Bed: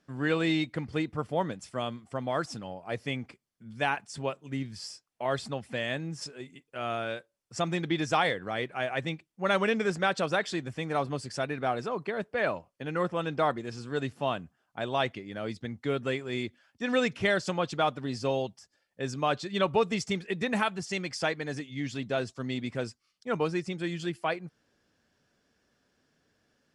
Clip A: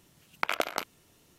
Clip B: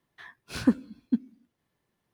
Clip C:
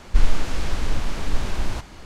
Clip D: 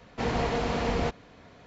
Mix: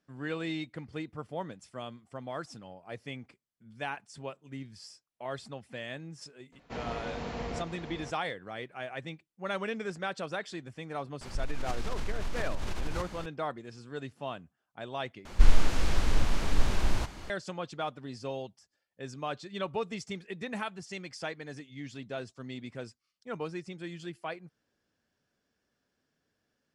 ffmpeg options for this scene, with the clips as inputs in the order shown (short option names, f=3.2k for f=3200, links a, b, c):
-filter_complex "[3:a]asplit=2[a][b];[0:a]volume=-8dB[c];[4:a]aecho=1:1:485:0.422[d];[a]acompressor=threshold=-24dB:ratio=16:attack=0.11:release=62:knee=1:detection=rms[e];[c]asplit=2[f][g];[f]atrim=end=15.254[h];[b]atrim=end=2.05,asetpts=PTS-STARTPTS,volume=-2.5dB[i];[g]atrim=start=17.296[j];[d]atrim=end=1.66,asetpts=PTS-STARTPTS,volume=-10dB,afade=t=in:d=0.004:c=hsin,afade=t=out:st=1.656:d=0.004:c=hsin,adelay=6520[k];[e]atrim=end=2.05,asetpts=PTS-STARTPTS,volume=-2dB,afade=t=in:d=0.004:c=hsin,afade=t=out:st=2.046:d=0.004:c=hsin,adelay=11210[l];[h][i]acrossfade=d=0.004:c1=hsin:c2=hsin[m];[m][j]acrossfade=d=0.004:c1=hsin:c2=hsin[n];[n][k][l]amix=inputs=3:normalize=0"